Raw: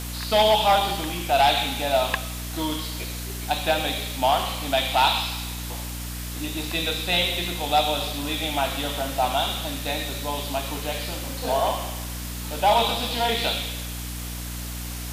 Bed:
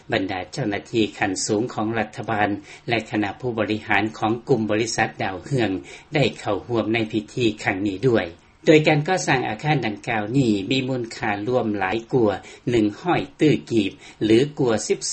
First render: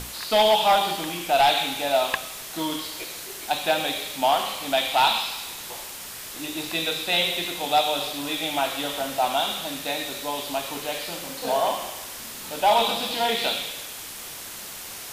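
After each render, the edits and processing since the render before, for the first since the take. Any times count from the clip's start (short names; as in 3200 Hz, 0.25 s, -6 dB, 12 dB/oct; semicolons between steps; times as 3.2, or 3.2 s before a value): notches 60/120/180/240/300 Hz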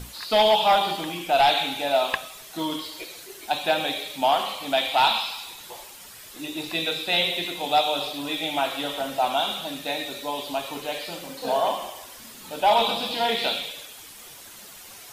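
denoiser 9 dB, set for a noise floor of -38 dBFS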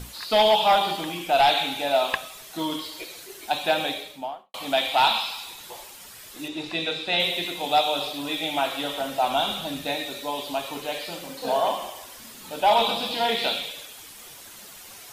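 3.81–4.54 studio fade out; 6.48–7.2 air absorption 70 m; 9.3–9.95 low shelf 160 Hz +11.5 dB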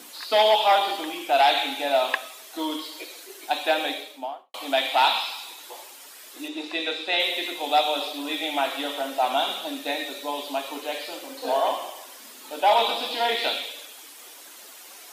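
Chebyshev high-pass 270 Hz, order 4; dynamic EQ 1900 Hz, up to +4 dB, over -41 dBFS, Q 3.1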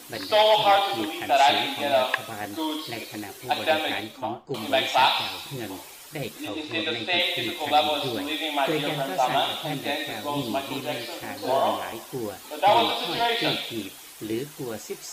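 add bed -13.5 dB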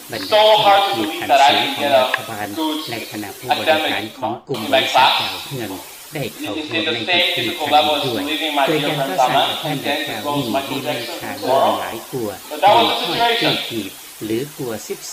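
gain +8 dB; limiter -2 dBFS, peak gain reduction 3 dB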